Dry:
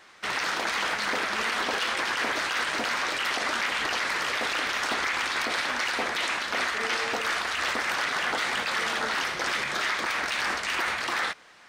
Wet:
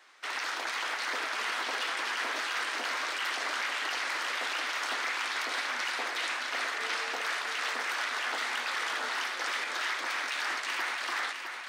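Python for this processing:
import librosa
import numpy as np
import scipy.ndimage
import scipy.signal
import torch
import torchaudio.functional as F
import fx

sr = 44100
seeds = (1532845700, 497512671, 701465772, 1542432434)

p1 = scipy.signal.sosfilt(scipy.signal.cheby1(6, 1.0, 240.0, 'highpass', fs=sr, output='sos'), x)
p2 = fx.low_shelf(p1, sr, hz=450.0, db=-9.0)
p3 = p2 + fx.echo_feedback(p2, sr, ms=658, feedback_pct=38, wet_db=-6.5, dry=0)
y = F.gain(torch.from_numpy(p3), -4.5).numpy()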